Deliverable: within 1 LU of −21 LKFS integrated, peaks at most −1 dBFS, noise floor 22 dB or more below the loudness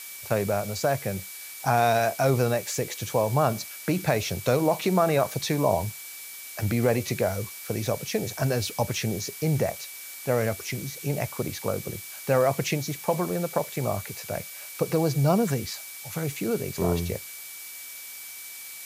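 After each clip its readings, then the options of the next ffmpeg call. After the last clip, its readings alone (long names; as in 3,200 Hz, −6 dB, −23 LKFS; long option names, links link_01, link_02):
interfering tone 2,300 Hz; level of the tone −46 dBFS; background noise floor −41 dBFS; target noise floor −49 dBFS; integrated loudness −27.0 LKFS; sample peak −8.0 dBFS; target loudness −21.0 LKFS
→ -af "bandreject=frequency=2300:width=30"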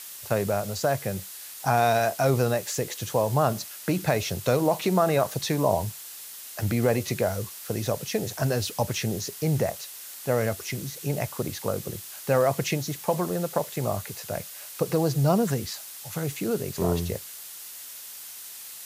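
interfering tone none found; background noise floor −42 dBFS; target noise floor −49 dBFS
→ -af "afftdn=noise_reduction=7:noise_floor=-42"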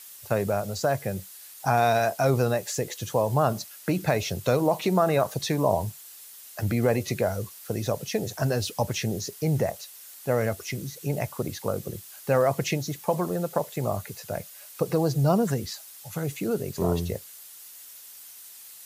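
background noise floor −46 dBFS; target noise floor −49 dBFS
→ -af "afftdn=noise_reduction=6:noise_floor=-46"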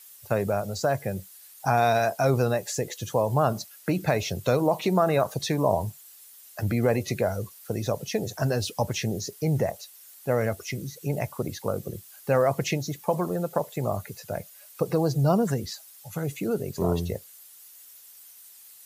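background noise floor −50 dBFS; integrated loudness −27.0 LKFS; sample peak −8.5 dBFS; target loudness −21.0 LKFS
→ -af "volume=6dB"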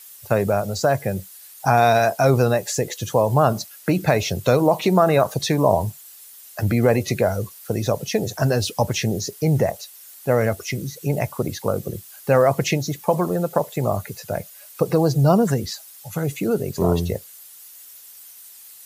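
integrated loudness −21.0 LKFS; sample peak −2.5 dBFS; background noise floor −44 dBFS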